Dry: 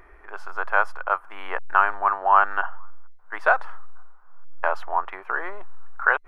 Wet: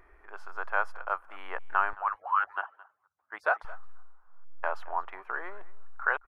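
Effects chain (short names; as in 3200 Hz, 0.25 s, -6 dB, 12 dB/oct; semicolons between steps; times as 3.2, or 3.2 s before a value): 1.93–3.65 median-filter separation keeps percussive; echo 0.218 s -20.5 dB; gain -8 dB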